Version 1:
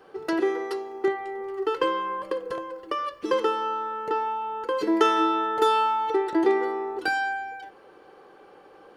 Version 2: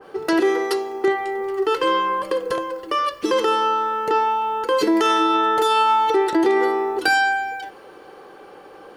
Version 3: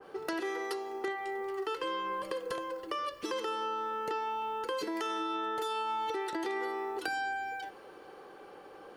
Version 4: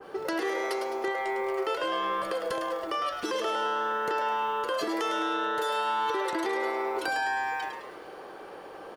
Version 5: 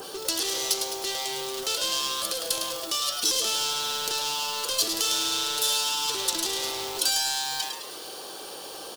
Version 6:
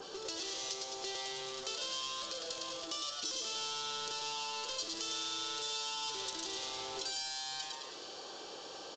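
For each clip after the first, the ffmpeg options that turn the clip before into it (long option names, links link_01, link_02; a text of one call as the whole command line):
ffmpeg -i in.wav -af "highshelf=frequency=7400:gain=6,alimiter=limit=-18dB:level=0:latency=1:release=38,adynamicequalizer=threshold=0.01:dfrequency=2300:dqfactor=0.7:tfrequency=2300:tqfactor=0.7:attack=5:release=100:ratio=0.375:range=2:mode=boostabove:tftype=highshelf,volume=8dB" out.wav
ffmpeg -i in.wav -filter_complex "[0:a]acrossover=split=610|1600[link_01][link_02][link_03];[link_01]acompressor=threshold=-31dB:ratio=4[link_04];[link_02]acompressor=threshold=-32dB:ratio=4[link_05];[link_03]acompressor=threshold=-34dB:ratio=4[link_06];[link_04][link_05][link_06]amix=inputs=3:normalize=0,volume=-8dB" out.wav
ffmpeg -i in.wav -filter_complex "[0:a]asplit=2[link_01][link_02];[link_02]alimiter=level_in=6.5dB:limit=-24dB:level=0:latency=1,volume=-6.5dB,volume=0dB[link_03];[link_01][link_03]amix=inputs=2:normalize=0,asplit=6[link_04][link_05][link_06][link_07][link_08][link_09];[link_05]adelay=105,afreqshift=140,volume=-7dB[link_10];[link_06]adelay=210,afreqshift=280,volume=-14.1dB[link_11];[link_07]adelay=315,afreqshift=420,volume=-21.3dB[link_12];[link_08]adelay=420,afreqshift=560,volume=-28.4dB[link_13];[link_09]adelay=525,afreqshift=700,volume=-35.5dB[link_14];[link_04][link_10][link_11][link_12][link_13][link_14]amix=inputs=6:normalize=0" out.wav
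ffmpeg -i in.wav -af "asoftclip=type=hard:threshold=-31dB,aexciter=amount=12.8:drive=4:freq=3100,acompressor=mode=upward:threshold=-31dB:ratio=2.5,volume=-2dB" out.wav
ffmpeg -i in.wav -af "acompressor=threshold=-30dB:ratio=2.5,aecho=1:1:109:0.447,volume=-8dB" -ar 16000 -c:a pcm_alaw out.wav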